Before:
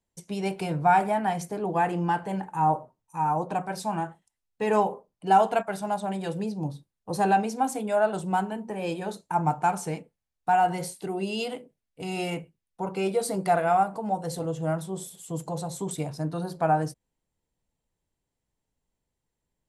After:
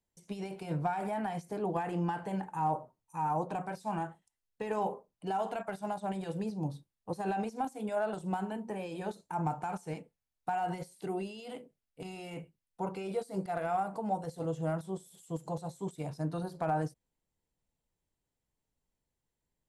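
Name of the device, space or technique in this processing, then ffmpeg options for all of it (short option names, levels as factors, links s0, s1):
de-esser from a sidechain: -filter_complex "[0:a]asplit=2[s0][s1];[s1]highpass=4300,apad=whole_len=868254[s2];[s0][s2]sidechaincompress=threshold=0.00355:ratio=10:attack=0.56:release=58,volume=0.631"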